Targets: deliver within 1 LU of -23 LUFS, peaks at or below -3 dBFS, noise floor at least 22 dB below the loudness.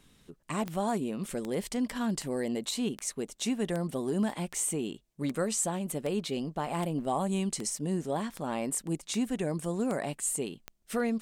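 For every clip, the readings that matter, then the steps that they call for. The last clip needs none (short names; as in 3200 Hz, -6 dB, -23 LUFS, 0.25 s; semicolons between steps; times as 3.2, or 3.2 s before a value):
clicks 14; loudness -32.5 LUFS; peak -17.0 dBFS; loudness target -23.0 LUFS
-> de-click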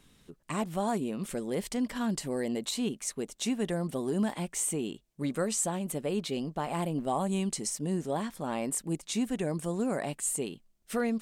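clicks 0; loudness -32.5 LUFS; peak -18.0 dBFS; loudness target -23.0 LUFS
-> gain +9.5 dB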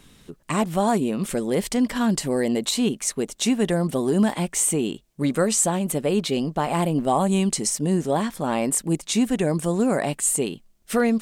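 loudness -23.0 LUFS; peak -8.5 dBFS; noise floor -57 dBFS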